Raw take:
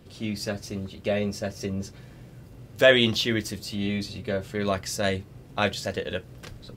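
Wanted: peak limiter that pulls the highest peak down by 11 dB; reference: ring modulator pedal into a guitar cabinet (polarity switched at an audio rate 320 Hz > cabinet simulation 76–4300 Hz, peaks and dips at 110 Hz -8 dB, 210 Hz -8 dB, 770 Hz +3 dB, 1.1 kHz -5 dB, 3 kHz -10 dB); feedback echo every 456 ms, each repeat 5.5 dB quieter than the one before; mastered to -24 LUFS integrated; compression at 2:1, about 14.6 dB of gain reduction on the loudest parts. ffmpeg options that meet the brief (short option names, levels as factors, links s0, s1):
-af "acompressor=threshold=0.0112:ratio=2,alimiter=level_in=1.68:limit=0.0631:level=0:latency=1,volume=0.596,aecho=1:1:456|912|1368|1824|2280|2736|3192:0.531|0.281|0.149|0.079|0.0419|0.0222|0.0118,aeval=exprs='val(0)*sgn(sin(2*PI*320*n/s))':c=same,highpass=76,equalizer=f=110:t=q:w=4:g=-8,equalizer=f=210:t=q:w=4:g=-8,equalizer=f=770:t=q:w=4:g=3,equalizer=f=1100:t=q:w=4:g=-5,equalizer=f=3000:t=q:w=4:g=-10,lowpass=f=4300:w=0.5412,lowpass=f=4300:w=1.3066,volume=7.08"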